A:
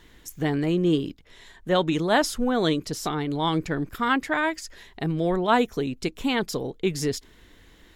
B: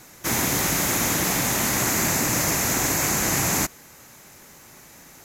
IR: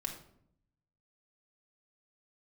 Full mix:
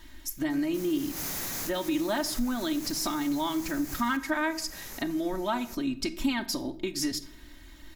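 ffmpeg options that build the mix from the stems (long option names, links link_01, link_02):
-filter_complex "[0:a]acompressor=threshold=-27dB:ratio=6,equalizer=frequency=460:width=3.5:gain=-12.5,aecho=1:1:3.2:0.79,volume=-4dB,asplit=3[link_01][link_02][link_03];[link_02]volume=-4dB[link_04];[1:a]acompressor=threshold=-25dB:ratio=6,asoftclip=type=hard:threshold=-38dB,adelay=500,volume=2.5dB[link_05];[link_03]apad=whole_len=253518[link_06];[link_05][link_06]sidechaincompress=threshold=-44dB:ratio=8:attack=11:release=147[link_07];[2:a]atrim=start_sample=2205[link_08];[link_04][link_08]afir=irnorm=-1:irlink=0[link_09];[link_01][link_07][link_09]amix=inputs=3:normalize=0,aexciter=amount=1.4:drive=8.1:freq=4400,highshelf=frequency=6600:gain=-6"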